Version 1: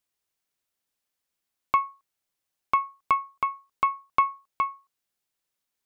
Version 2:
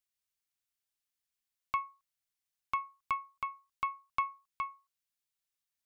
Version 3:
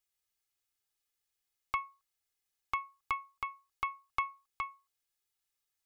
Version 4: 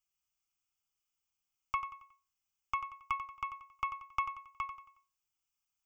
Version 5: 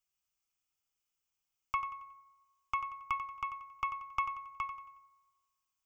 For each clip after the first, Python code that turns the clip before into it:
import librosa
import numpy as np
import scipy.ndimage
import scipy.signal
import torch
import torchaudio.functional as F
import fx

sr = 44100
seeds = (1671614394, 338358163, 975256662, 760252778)

y1 = fx.peak_eq(x, sr, hz=440.0, db=-13.0, octaves=2.2)
y1 = y1 * 10.0 ** (-5.5 / 20.0)
y2 = y1 + 0.71 * np.pad(y1, (int(2.4 * sr / 1000.0), 0))[:len(y1)]
y2 = y2 * 10.0 ** (1.0 / 20.0)
y3 = fx.fixed_phaser(y2, sr, hz=2700.0, stages=8)
y3 = fx.echo_feedback(y3, sr, ms=91, feedback_pct=39, wet_db=-11.0)
y4 = fx.rev_fdn(y3, sr, rt60_s=1.3, lf_ratio=1.05, hf_ratio=0.5, size_ms=43.0, drr_db=17.0)